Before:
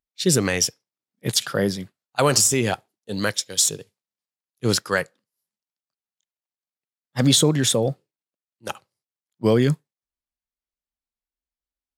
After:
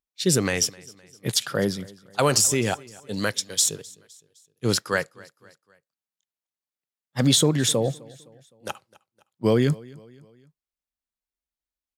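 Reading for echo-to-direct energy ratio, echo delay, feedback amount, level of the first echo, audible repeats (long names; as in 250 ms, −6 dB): −22.0 dB, 257 ms, 48%, −23.0 dB, 2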